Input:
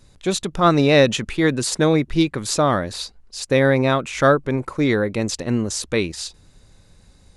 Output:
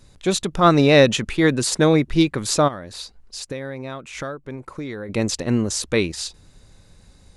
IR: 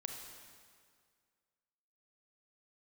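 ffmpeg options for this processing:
-filter_complex "[0:a]asplit=3[a][b][c];[a]afade=t=out:st=2.67:d=0.02[d];[b]acompressor=threshold=-32dB:ratio=4,afade=t=in:st=2.67:d=0.02,afade=t=out:st=5.08:d=0.02[e];[c]afade=t=in:st=5.08:d=0.02[f];[d][e][f]amix=inputs=3:normalize=0,volume=1dB"

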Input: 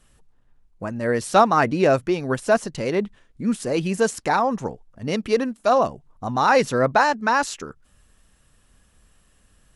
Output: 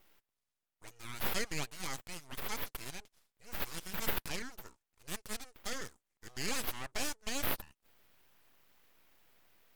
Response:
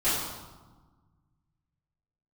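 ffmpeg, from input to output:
-af "bandpass=f=8k:t=q:w=1.6:csg=0,aeval=exprs='abs(val(0))':c=same,volume=4.5dB"

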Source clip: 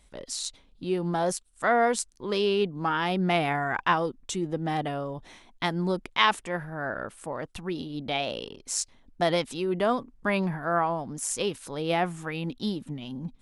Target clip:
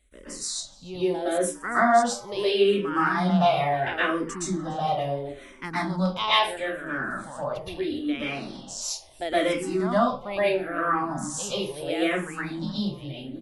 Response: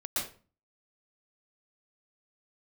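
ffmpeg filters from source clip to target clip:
-filter_complex "[0:a]asplit=4[a][b][c][d];[b]adelay=293,afreqshift=120,volume=-23dB[e];[c]adelay=586,afreqshift=240,volume=-29dB[f];[d]adelay=879,afreqshift=360,volume=-35dB[g];[a][e][f][g]amix=inputs=4:normalize=0[h];[1:a]atrim=start_sample=2205,afade=t=out:st=0.33:d=0.01,atrim=end_sample=14994[i];[h][i]afir=irnorm=-1:irlink=0,asplit=2[j][k];[k]afreqshift=-0.75[l];[j][l]amix=inputs=2:normalize=1"

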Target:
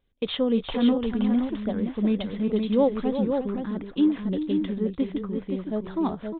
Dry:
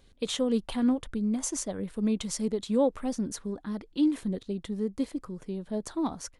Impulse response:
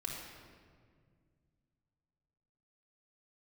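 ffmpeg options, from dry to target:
-af "aresample=8000,aresample=44100,agate=range=-17dB:threshold=-49dB:ratio=16:detection=peak,aecho=1:1:355|521:0.335|0.531,volume=3.5dB"

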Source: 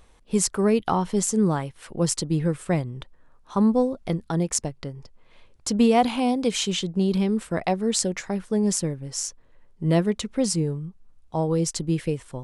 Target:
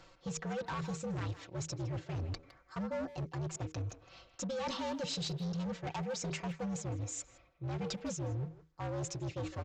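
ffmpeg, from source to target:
-filter_complex "[0:a]highpass=49,bandreject=f=60:t=h:w=6,bandreject=f=120:t=h:w=6,bandreject=f=180:t=h:w=6,bandreject=f=240:t=h:w=6,bandreject=f=300:t=h:w=6,bandreject=f=360:t=h:w=6,bandreject=f=420:t=h:w=6,aecho=1:1:6.4:0.84,areverse,acompressor=threshold=-32dB:ratio=10,areverse,afreqshift=-57,asetrate=56889,aresample=44100,aresample=16000,asoftclip=type=hard:threshold=-34.5dB,aresample=44100,asplit=2[a][b];[b]adelay=160,highpass=300,lowpass=3.4k,asoftclip=type=hard:threshold=-39.5dB,volume=-10dB[c];[a][c]amix=inputs=2:normalize=0"

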